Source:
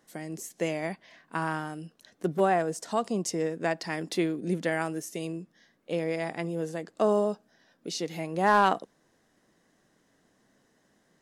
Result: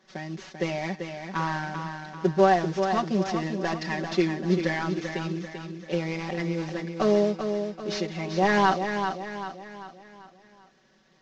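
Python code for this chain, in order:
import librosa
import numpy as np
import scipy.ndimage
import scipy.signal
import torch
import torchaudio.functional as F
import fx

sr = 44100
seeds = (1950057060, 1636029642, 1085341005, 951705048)

y = fx.cvsd(x, sr, bps=32000)
y = fx.peak_eq(y, sr, hz=1700.0, db=3.0, octaves=0.26)
y = y + 0.99 * np.pad(y, (int(5.3 * sr / 1000.0), 0))[:len(y)]
y = fx.echo_feedback(y, sr, ms=390, feedback_pct=45, wet_db=-7.0)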